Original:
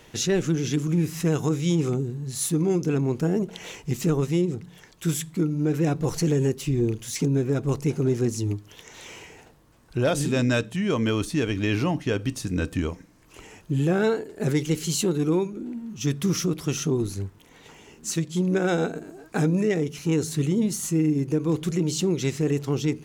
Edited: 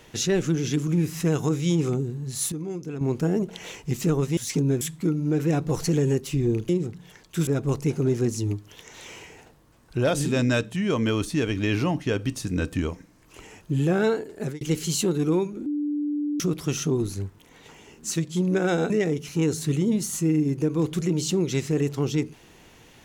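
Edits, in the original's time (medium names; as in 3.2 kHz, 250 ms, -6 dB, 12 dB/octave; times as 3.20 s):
2.52–3.01 s: gain -9.5 dB
4.37–5.15 s: swap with 7.03–7.47 s
14.35–14.61 s: fade out
15.66–16.40 s: bleep 294 Hz -23.5 dBFS
18.90–19.60 s: delete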